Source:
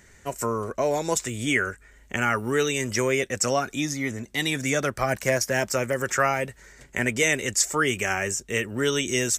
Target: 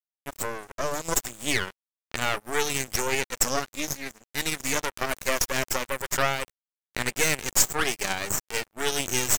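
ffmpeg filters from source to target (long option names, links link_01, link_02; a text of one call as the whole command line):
ffmpeg -i in.wav -af "highshelf=frequency=6100:gain=8.5,aeval=exprs='0.708*(cos(1*acos(clip(val(0)/0.708,-1,1)))-cos(1*PI/2))+0.0631*(cos(6*acos(clip(val(0)/0.708,-1,1)))-cos(6*PI/2))+0.158*(cos(8*acos(clip(val(0)/0.708,-1,1)))-cos(8*PI/2))':channel_layout=same,aeval=exprs='sgn(val(0))*max(abs(val(0))-0.0299,0)':channel_layout=same,volume=-3dB" out.wav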